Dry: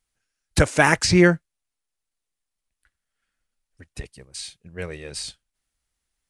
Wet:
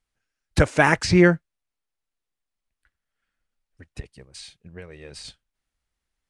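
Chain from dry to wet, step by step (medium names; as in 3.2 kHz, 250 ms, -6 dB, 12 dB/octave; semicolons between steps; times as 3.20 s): low-pass 3.3 kHz 6 dB/octave; 4.00–5.25 s: compression 12:1, threshold -36 dBFS, peak gain reduction 11 dB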